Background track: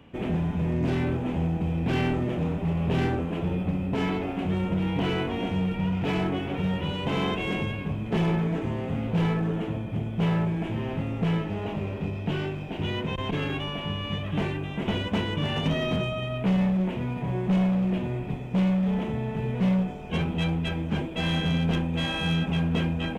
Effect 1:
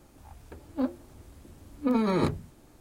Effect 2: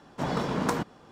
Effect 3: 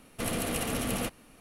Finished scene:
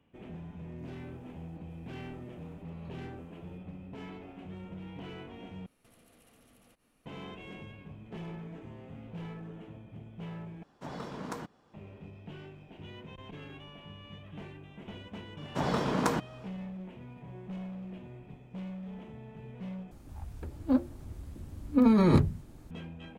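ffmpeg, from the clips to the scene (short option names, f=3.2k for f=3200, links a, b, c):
-filter_complex "[1:a]asplit=2[a][b];[2:a]asplit=2[c][d];[0:a]volume=-17.5dB[e];[a]acompressor=threshold=-37dB:ratio=6:attack=3.2:release=140:knee=1:detection=peak[f];[3:a]acompressor=threshold=-45dB:ratio=6:attack=3.2:release=140:knee=1:detection=peak[g];[b]bass=f=250:g=9,treble=f=4k:g=-2[h];[e]asplit=4[i][j][k][l];[i]atrim=end=5.664[m];[g]atrim=end=1.4,asetpts=PTS-STARTPTS,volume=-15dB[n];[j]atrim=start=7.056:end=10.634[o];[c]atrim=end=1.11,asetpts=PTS-STARTPTS,volume=-12dB[p];[k]atrim=start=11.736:end=19.914[q];[h]atrim=end=2.8,asetpts=PTS-STARTPTS,volume=-1dB[r];[l]atrim=start=22.706[s];[f]atrim=end=2.8,asetpts=PTS-STARTPTS,volume=-17dB,afade=t=in:d=0.004:c=hsin,afade=t=out:st=2.796:d=0.004:c=hsin,adelay=780[t];[d]atrim=end=1.11,asetpts=PTS-STARTPTS,volume=-1dB,afade=t=in:d=0.004:c=hsin,afade=t=out:st=1.106:d=0.004:c=hsin,adelay=15370[u];[m][n]acrossfade=d=0.004:c1=hsin:c2=hsin[v];[v][o]acrossfade=d=0.004:c1=hsin:c2=hsin[w];[w][p]acrossfade=d=0.004:c1=hsin:c2=hsin[x];[x][q]acrossfade=d=0.004:c1=hsin:c2=hsin[y];[y][r]acrossfade=d=0.004:c1=hsin:c2=hsin[z];[z][s]acrossfade=d=0.004:c1=hsin:c2=hsin[aa];[aa][t][u]amix=inputs=3:normalize=0"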